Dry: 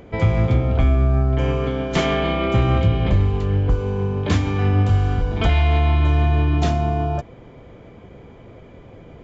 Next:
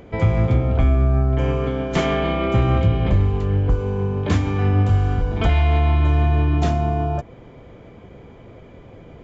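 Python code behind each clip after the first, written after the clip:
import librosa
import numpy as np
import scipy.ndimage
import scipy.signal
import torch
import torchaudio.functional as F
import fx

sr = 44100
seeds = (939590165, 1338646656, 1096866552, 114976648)

y = fx.dynamic_eq(x, sr, hz=4100.0, q=0.82, threshold_db=-45.0, ratio=4.0, max_db=-4)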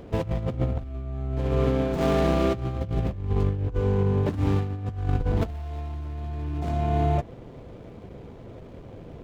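y = scipy.ndimage.median_filter(x, 25, mode='constant')
y = fx.over_compress(y, sr, threshold_db=-21.0, ratio=-0.5)
y = F.gain(torch.from_numpy(y), -3.5).numpy()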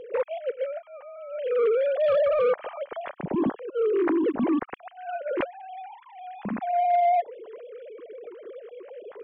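y = fx.sine_speech(x, sr)
y = 10.0 ** (-15.0 / 20.0) * np.tanh(y / 10.0 ** (-15.0 / 20.0))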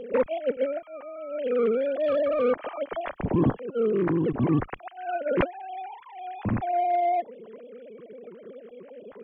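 y = fx.octave_divider(x, sr, octaves=1, level_db=0.0)
y = fx.rider(y, sr, range_db=3, speed_s=0.5)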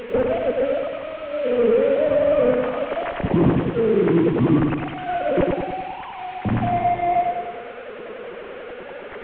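y = fx.delta_mod(x, sr, bps=16000, step_db=-35.5)
y = fx.echo_feedback(y, sr, ms=100, feedback_pct=57, wet_db=-3.5)
y = F.gain(torch.from_numpy(y), 4.5).numpy()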